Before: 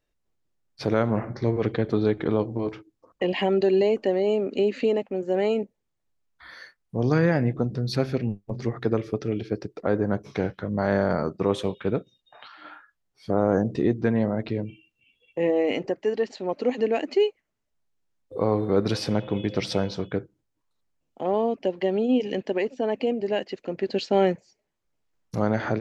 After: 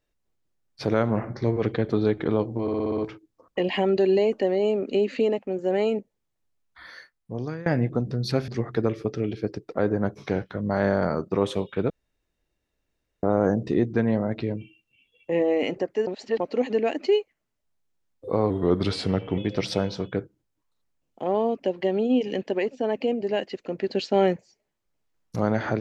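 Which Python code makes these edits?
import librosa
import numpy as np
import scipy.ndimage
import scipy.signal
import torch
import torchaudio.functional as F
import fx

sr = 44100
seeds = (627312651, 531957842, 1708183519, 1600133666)

y = fx.edit(x, sr, fx.stutter(start_s=2.62, slice_s=0.06, count=7),
    fx.fade_out_to(start_s=6.58, length_s=0.72, floor_db=-22.0),
    fx.cut(start_s=8.12, length_s=0.44),
    fx.room_tone_fill(start_s=11.98, length_s=1.33),
    fx.reverse_span(start_s=16.15, length_s=0.33),
    fx.speed_span(start_s=18.58, length_s=0.79, speed=0.9), tone=tone)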